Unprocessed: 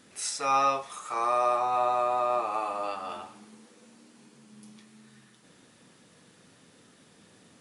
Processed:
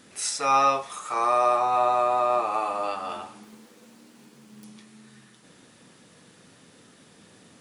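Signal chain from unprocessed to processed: 3.43–4.64 s: self-modulated delay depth 0.26 ms; trim +4 dB

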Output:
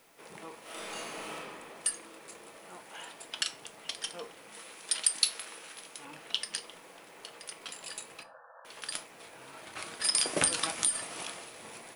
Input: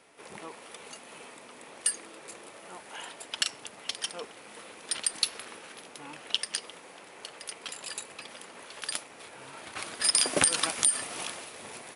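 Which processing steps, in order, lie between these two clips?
4.52–6.05 s: tilt EQ +2 dB/octave; added noise white -64 dBFS; 8.23–8.65 s: brick-wall FIR band-pass 480–1800 Hz; simulated room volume 200 m³, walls furnished, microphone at 0.66 m; 0.62–1.34 s: reverb throw, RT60 2.2 s, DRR -10 dB; trim -4 dB

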